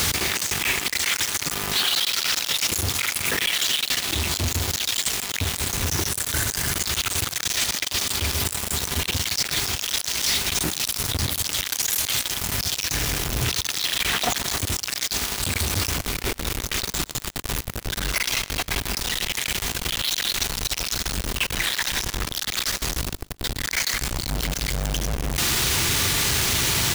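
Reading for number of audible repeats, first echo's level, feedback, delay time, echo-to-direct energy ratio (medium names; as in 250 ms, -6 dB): 2, -23.0 dB, 41%, 119 ms, -22.0 dB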